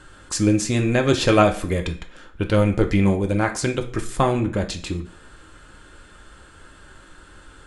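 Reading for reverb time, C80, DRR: 0.50 s, 16.5 dB, 3.0 dB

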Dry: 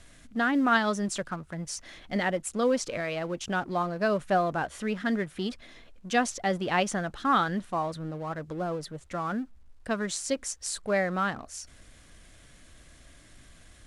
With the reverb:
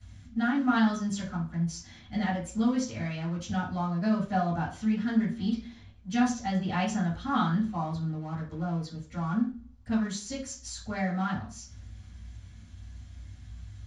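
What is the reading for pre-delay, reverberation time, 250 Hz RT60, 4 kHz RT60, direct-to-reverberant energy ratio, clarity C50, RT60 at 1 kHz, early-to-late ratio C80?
3 ms, 0.40 s, 0.55 s, 0.40 s, −11.5 dB, 6.5 dB, 0.40 s, 13.0 dB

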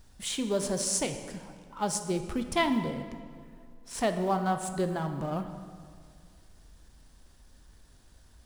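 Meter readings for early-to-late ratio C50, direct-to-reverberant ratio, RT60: 8.5 dB, 7.0 dB, 2.1 s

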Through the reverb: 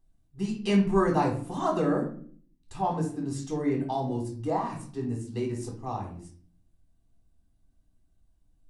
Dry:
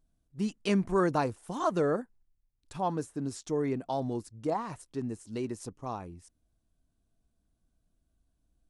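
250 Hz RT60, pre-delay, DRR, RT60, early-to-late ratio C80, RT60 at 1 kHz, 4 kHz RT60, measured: 0.80 s, 3 ms, −2.0 dB, 0.50 s, 12.5 dB, 0.45 s, 0.35 s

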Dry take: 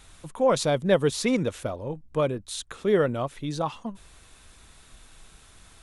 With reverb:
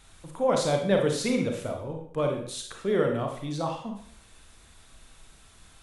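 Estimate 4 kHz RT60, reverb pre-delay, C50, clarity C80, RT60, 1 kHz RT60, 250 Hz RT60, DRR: 0.55 s, 31 ms, 5.0 dB, 8.5 dB, 0.60 s, 0.60 s, 0.55 s, 2.0 dB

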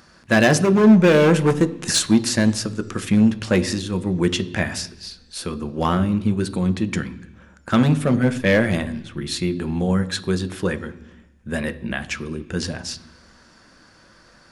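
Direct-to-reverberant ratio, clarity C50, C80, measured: 10.5 dB, 17.0 dB, 19.0 dB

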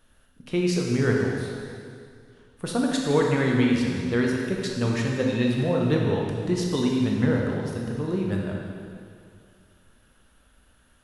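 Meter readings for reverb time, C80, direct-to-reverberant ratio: 2.3 s, 2.0 dB, −1.5 dB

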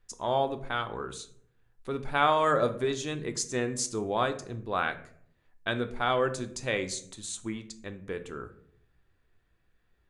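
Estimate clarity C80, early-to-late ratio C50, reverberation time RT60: 17.5 dB, 14.0 dB, 0.65 s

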